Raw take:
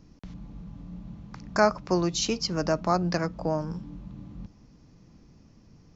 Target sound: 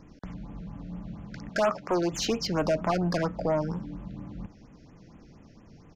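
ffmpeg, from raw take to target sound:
-filter_complex "[0:a]asettb=1/sr,asplit=3[a][b][c];[a]atrim=end=1.494[d];[b]atrim=start=1.49:end=2.12,asetpts=PTS-STARTPTS,afade=t=in:d=0.004:c=qsin,afade=t=out:st=0.626:d=0.004:c=qsin,highpass=f=260:p=1[e];[c]atrim=start=2.116[f];[d][e]acrossfade=d=0.004:c1=hsin:c2=qsin[g];[g][f]acrossfade=d=0.004:c1=qsin:c2=hsin,asoftclip=type=tanh:threshold=-24dB,asplit=2[h][i];[i]highpass=f=720:p=1,volume=8dB,asoftclip=type=tanh:threshold=-24dB[j];[h][j]amix=inputs=2:normalize=0,lowpass=f=2k:p=1,volume=-6dB,aresample=32000,aresample=44100,afftfilt=real='re*(1-between(b*sr/1024,920*pow(5000/920,0.5+0.5*sin(2*PI*4.3*pts/sr))/1.41,920*pow(5000/920,0.5+0.5*sin(2*PI*4.3*pts/sr))*1.41))':imag='im*(1-between(b*sr/1024,920*pow(5000/920,0.5+0.5*sin(2*PI*4.3*pts/sr))/1.41,920*pow(5000/920,0.5+0.5*sin(2*PI*4.3*pts/sr))*1.41))':win_size=1024:overlap=0.75,volume=6.5dB"

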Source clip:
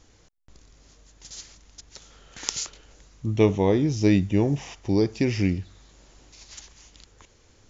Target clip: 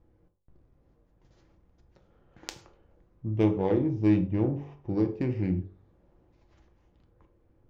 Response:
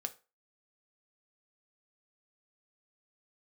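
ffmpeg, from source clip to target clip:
-filter_complex "[0:a]bandreject=f=48.14:t=h:w=4,bandreject=f=96.28:t=h:w=4,bandreject=f=144.42:t=h:w=4,bandreject=f=192.56:t=h:w=4,bandreject=f=240.7:t=h:w=4,bandreject=f=288.84:t=h:w=4,bandreject=f=336.98:t=h:w=4,bandreject=f=385.12:t=h:w=4,bandreject=f=433.26:t=h:w=4,bandreject=f=481.4:t=h:w=4,bandreject=f=529.54:t=h:w=4,bandreject=f=577.68:t=h:w=4,bandreject=f=625.82:t=h:w=4,bandreject=f=673.96:t=h:w=4,bandreject=f=722.1:t=h:w=4,bandreject=f=770.24:t=h:w=4,bandreject=f=818.38:t=h:w=4,bandreject=f=866.52:t=h:w=4,bandreject=f=914.66:t=h:w=4,bandreject=f=962.8:t=h:w=4,bandreject=f=1.01094k:t=h:w=4,bandreject=f=1.05908k:t=h:w=4,bandreject=f=1.10722k:t=h:w=4,bandreject=f=1.15536k:t=h:w=4,bandreject=f=1.2035k:t=h:w=4,bandreject=f=1.25164k:t=h:w=4,bandreject=f=1.29978k:t=h:w=4,bandreject=f=1.34792k:t=h:w=4,bandreject=f=1.39606k:t=h:w=4,bandreject=f=1.4442k:t=h:w=4,bandreject=f=1.49234k:t=h:w=4,adynamicsmooth=sensitivity=0.5:basefreq=890[a];[1:a]atrim=start_sample=2205,afade=t=out:st=0.13:d=0.01,atrim=end_sample=6174,asetrate=30429,aresample=44100[b];[a][b]afir=irnorm=-1:irlink=0,volume=-5dB"

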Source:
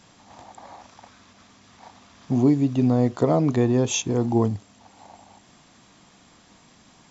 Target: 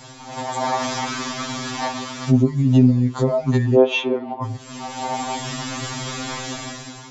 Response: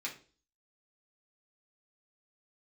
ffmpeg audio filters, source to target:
-filter_complex "[0:a]dynaudnorm=f=170:g=7:m=13dB,asettb=1/sr,asplit=3[a][b][c];[a]atrim=end=3.754[d];[b]atrim=start=3.75:end=4.43,asetpts=PTS-STARTPTS,afade=t=in:d=0.004:c=qsin,afade=t=out:st=0.676:d=0.004:c=qsin,highpass=f=320:w=0.5412,highpass=f=320:w=1.3066,equalizer=f=330:t=q:w=4:g=6,equalizer=f=630:t=q:w=4:g=7,equalizer=f=1.7k:t=q:w=4:g=-6,lowpass=f=2.8k:w=0.5412,lowpass=f=2.8k:w=1.3066[e];[c]atrim=start=4.426[f];[d][e]acrossfade=d=0.004:c1=hsin:c2=qsin[g];[g][f]acrossfade=d=0.004:c1=qsin:c2=hsin,acompressor=threshold=-26dB:ratio=8,alimiter=level_in=23dB:limit=-1dB:release=50:level=0:latency=1,afftfilt=real='re*2.45*eq(mod(b,6),0)':imag='im*2.45*eq(mod(b,6),0)':win_size=2048:overlap=0.75,volume=-8dB"

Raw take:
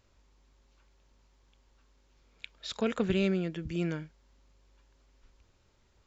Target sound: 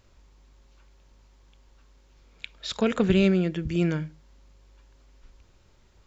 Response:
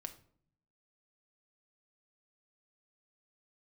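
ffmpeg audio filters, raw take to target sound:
-filter_complex "[0:a]asplit=2[a][b];[1:a]atrim=start_sample=2205,atrim=end_sample=6174,lowshelf=f=240:g=10[c];[b][c]afir=irnorm=-1:irlink=0,volume=-7.5dB[d];[a][d]amix=inputs=2:normalize=0,volume=4dB"

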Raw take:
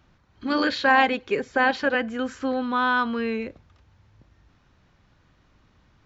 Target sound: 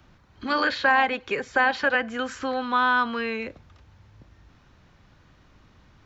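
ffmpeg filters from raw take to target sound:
-filter_complex "[0:a]acrossover=split=170|610|2300[a][b][c][d];[a]acompressor=threshold=-50dB:ratio=4[e];[b]acompressor=threshold=-40dB:ratio=4[f];[c]acompressor=threshold=-23dB:ratio=4[g];[d]acompressor=threshold=-39dB:ratio=4[h];[e][f][g][h]amix=inputs=4:normalize=0,volume=4.5dB"

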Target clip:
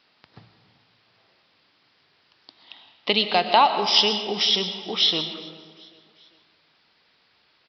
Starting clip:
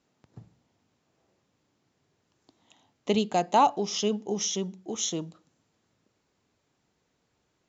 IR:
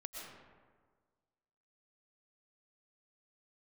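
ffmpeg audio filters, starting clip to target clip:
-filter_complex "[0:a]acompressor=threshold=-26dB:ratio=2,tiltshelf=f=770:g=-10,bandreject=f=60:t=h:w=6,bandreject=f=120:t=h:w=6,aecho=1:1:394|788|1182:0.0668|0.0334|0.0167,asplit=2[a][b];[1:a]atrim=start_sample=2205,highshelf=f=5k:g=10[c];[b][c]afir=irnorm=-1:irlink=0,volume=-1.5dB[d];[a][d]amix=inputs=2:normalize=0,aresample=11025,aresample=44100,volume=5dB"

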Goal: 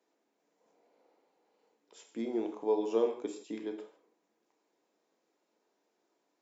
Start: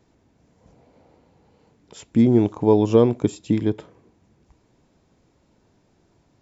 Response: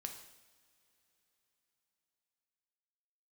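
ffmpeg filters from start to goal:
-filter_complex "[0:a]highpass=f=320:w=0.5412,highpass=f=320:w=1.3066[a];[1:a]atrim=start_sample=2205,afade=t=out:st=0.22:d=0.01,atrim=end_sample=10143[b];[a][b]afir=irnorm=-1:irlink=0,volume=-9dB"

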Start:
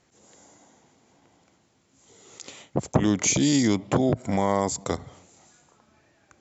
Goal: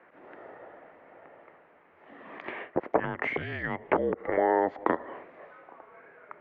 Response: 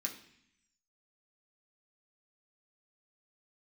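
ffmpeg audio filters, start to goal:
-af "apsyclip=13dB,acompressor=threshold=-16dB:ratio=6,highpass=f=550:t=q:w=0.5412,highpass=f=550:t=q:w=1.307,lowpass=f=2.3k:t=q:w=0.5176,lowpass=f=2.3k:t=q:w=0.7071,lowpass=f=2.3k:t=q:w=1.932,afreqshift=-180"

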